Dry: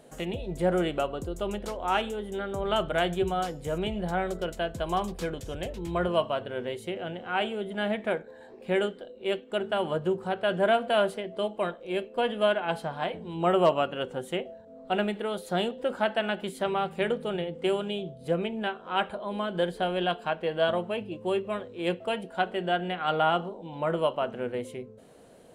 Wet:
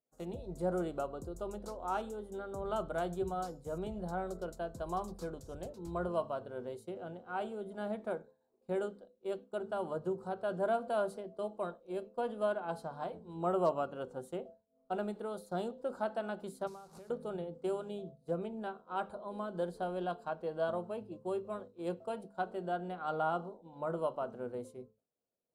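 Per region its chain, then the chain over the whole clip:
16.67–17.10 s: one-bit delta coder 64 kbps, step -31.5 dBFS + compression 12:1, threshold -36 dBFS
whole clip: expander -35 dBFS; high-order bell 2.4 kHz -14 dB 1.2 oct; hum notches 50/100/150/200 Hz; trim -8.5 dB

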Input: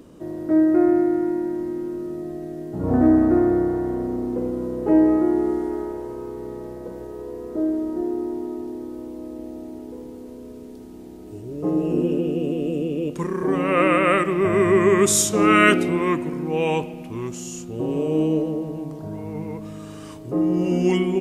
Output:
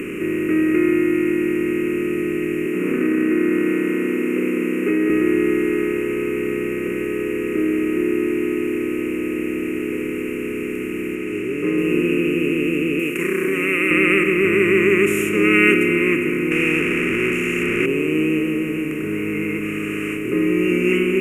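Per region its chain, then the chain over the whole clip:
2.66–5.10 s: steep high-pass 180 Hz 48 dB/octave + delay 197 ms -6.5 dB + compression 3:1, threshold -18 dBFS
11.15–11.78 s: low-pass 7.2 kHz + bass shelf 170 Hz -10.5 dB
12.99–13.91 s: RIAA curve recording + compression 3:1, threshold -23 dBFS
16.51–17.86 s: one-bit delta coder 64 kbps, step -21 dBFS + low-pass 5.5 kHz
whole clip: spectral levelling over time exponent 0.4; FFT filter 110 Hz 0 dB, 410 Hz +5 dB, 700 Hz -21 dB, 2.6 kHz +14 dB, 3.9 kHz -27 dB, 13 kHz +2 dB; trim -7 dB

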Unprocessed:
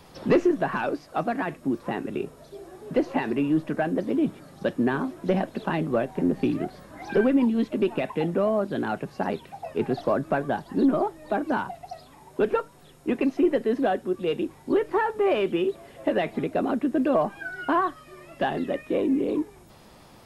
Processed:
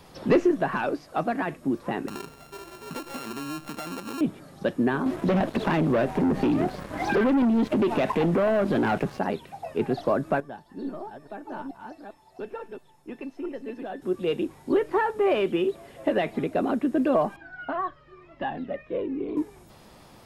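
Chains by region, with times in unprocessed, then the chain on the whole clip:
2.08–4.21 s: sorted samples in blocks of 32 samples + compression, threshold -32 dBFS
5.06–9.19 s: waveshaping leveller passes 3 + compression 5:1, threshold -20 dBFS + treble shelf 4.2 kHz -6.5 dB
10.40–14.02 s: chunks repeated in reverse 437 ms, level -4 dB + feedback comb 890 Hz, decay 0.21 s, mix 80%
17.36–19.37 s: distance through air 220 m + Shepard-style flanger falling 1 Hz
whole clip: none

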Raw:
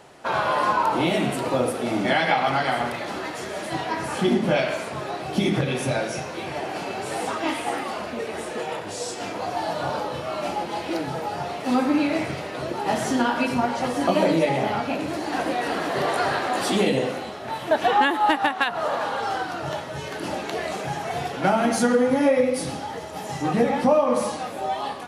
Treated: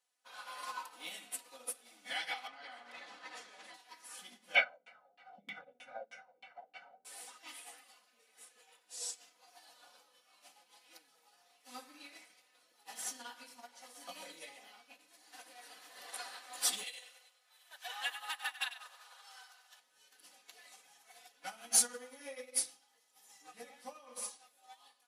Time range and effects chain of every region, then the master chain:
2.47–3.74 s: tape spacing loss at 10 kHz 22 dB + level flattener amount 100%
4.55–7.05 s: comb 1.4 ms, depth 94% + upward compressor, threshold -23 dBFS + LFO low-pass saw down 3.2 Hz 300–2800 Hz
16.83–19.80 s: high-pass 830 Hz + two-band feedback delay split 1.4 kHz, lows 184 ms, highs 96 ms, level -5 dB
whole clip: differentiator; comb 4 ms, depth 86%; upward expansion 2.5:1, over -45 dBFS; trim +3 dB

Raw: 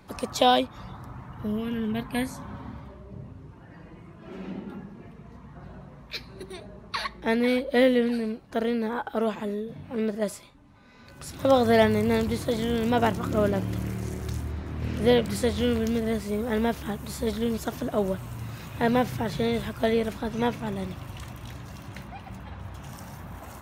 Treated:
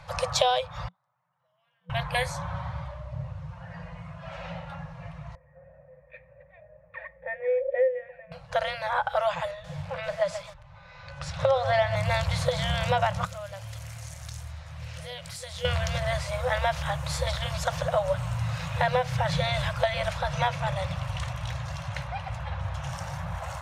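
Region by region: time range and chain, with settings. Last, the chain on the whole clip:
0.88–1.90 s: high-pass 180 Hz 24 dB/octave + inverted gate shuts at -42 dBFS, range -37 dB
5.35–8.32 s: cascade formant filter e + treble shelf 2.5 kHz -9.5 dB
9.51–11.96 s: distance through air 80 m + bit-crushed delay 131 ms, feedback 35%, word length 7-bit, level -13 dB
13.25–15.65 s: pre-emphasis filter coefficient 0.8 + compression 4:1, threshold -39 dBFS
whole clip: low-pass 7.1 kHz 12 dB/octave; FFT band-reject 180–490 Hz; compression 6:1, threshold -28 dBFS; trim +7.5 dB

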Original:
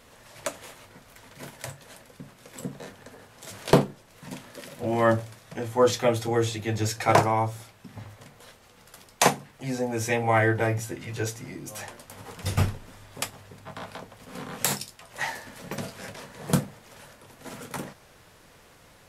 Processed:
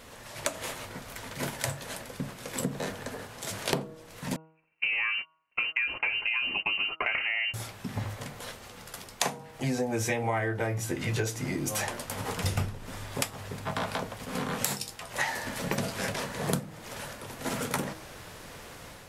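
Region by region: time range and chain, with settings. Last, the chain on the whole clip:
4.36–7.54 s: gate -35 dBFS, range -40 dB + compression 3:1, threshold -26 dBFS + frequency inversion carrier 2.9 kHz
whole clip: level rider gain up to 4 dB; de-hum 159.3 Hz, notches 9; compression 12:1, threshold -31 dBFS; trim +5 dB

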